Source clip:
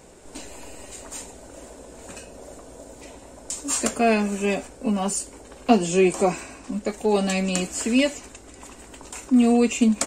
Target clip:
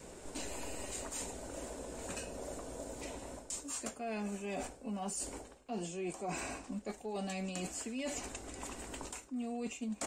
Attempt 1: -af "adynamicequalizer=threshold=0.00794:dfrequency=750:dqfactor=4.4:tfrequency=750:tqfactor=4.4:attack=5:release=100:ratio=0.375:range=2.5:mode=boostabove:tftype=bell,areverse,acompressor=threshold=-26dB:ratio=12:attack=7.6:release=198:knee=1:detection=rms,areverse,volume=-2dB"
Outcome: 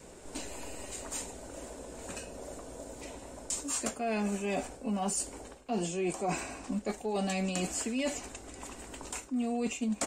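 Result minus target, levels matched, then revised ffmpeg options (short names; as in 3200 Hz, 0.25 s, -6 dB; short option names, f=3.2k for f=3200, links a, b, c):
compressor: peak gain reduction -7.5 dB
-af "adynamicequalizer=threshold=0.00794:dfrequency=750:dqfactor=4.4:tfrequency=750:tqfactor=4.4:attack=5:release=100:ratio=0.375:range=2.5:mode=boostabove:tftype=bell,areverse,acompressor=threshold=-34dB:ratio=12:attack=7.6:release=198:knee=1:detection=rms,areverse,volume=-2dB"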